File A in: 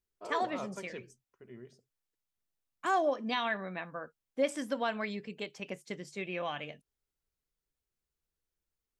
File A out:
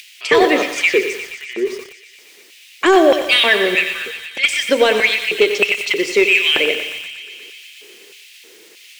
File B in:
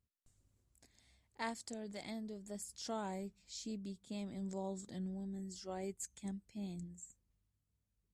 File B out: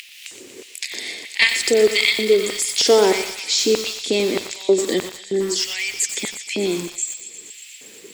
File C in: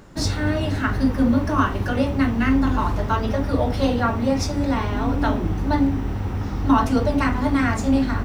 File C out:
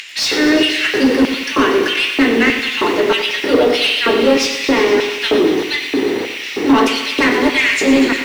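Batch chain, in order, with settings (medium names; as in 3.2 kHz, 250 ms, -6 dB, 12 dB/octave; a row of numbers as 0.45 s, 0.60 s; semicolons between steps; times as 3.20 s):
high-order bell 920 Hz -13.5 dB; in parallel at -2 dB: upward compressor, threshold -25 dBFS; on the sum: LFO high-pass square 1.6 Hz 410–2600 Hz; overdrive pedal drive 20 dB, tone 2.1 kHz, clips at -5 dBFS; on a send: thinning echo 119 ms, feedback 83%, high-pass 1 kHz, level -11 dB; on the sum: bit-crushed delay 92 ms, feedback 55%, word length 6-bit, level -10 dB; peak normalisation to -1.5 dBFS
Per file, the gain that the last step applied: +7.0 dB, +11.0 dB, +2.5 dB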